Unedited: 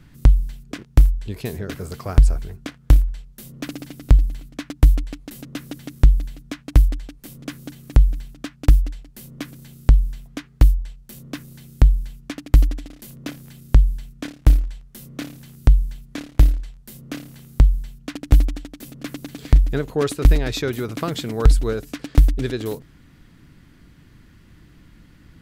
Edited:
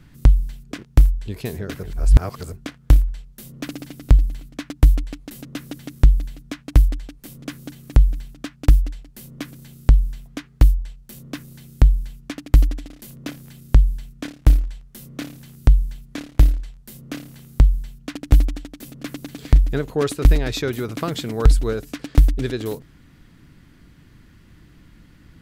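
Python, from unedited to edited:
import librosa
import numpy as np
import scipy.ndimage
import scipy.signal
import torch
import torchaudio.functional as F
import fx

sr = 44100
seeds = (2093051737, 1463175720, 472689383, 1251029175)

y = fx.edit(x, sr, fx.reverse_span(start_s=1.83, length_s=0.69), tone=tone)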